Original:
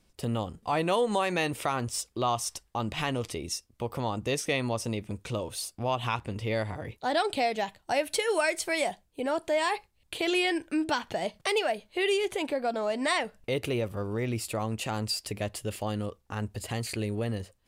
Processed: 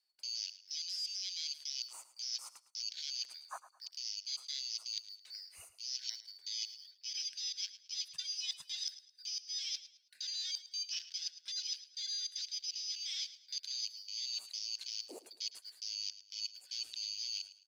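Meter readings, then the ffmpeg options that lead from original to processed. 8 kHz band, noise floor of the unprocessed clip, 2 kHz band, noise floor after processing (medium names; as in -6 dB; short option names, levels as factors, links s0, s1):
-3.5 dB, -69 dBFS, -23.0 dB, -68 dBFS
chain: -filter_complex "[0:a]afftfilt=real='real(if(lt(b,272),68*(eq(floor(b/68),0)*3+eq(floor(b/68),1)*2+eq(floor(b/68),2)*1+eq(floor(b/68),3)*0)+mod(b,68),b),0)':imag='imag(if(lt(b,272),68*(eq(floor(b/68),0)*3+eq(floor(b/68),1)*2+eq(floor(b/68),2)*1+eq(floor(b/68),3)*0)+mod(b,68),b),0)':win_size=2048:overlap=0.75,asplit=2[s0][s1];[s1]acrusher=bits=2:mode=log:mix=0:aa=0.000001,volume=0.376[s2];[s0][s2]amix=inputs=2:normalize=0,afwtdn=0.0398,areverse,acompressor=threshold=0.0224:ratio=16,areverse,highpass=f=1400:p=1,aecho=1:1:108|216|324:0.178|0.0551|0.0171,volume=0.708"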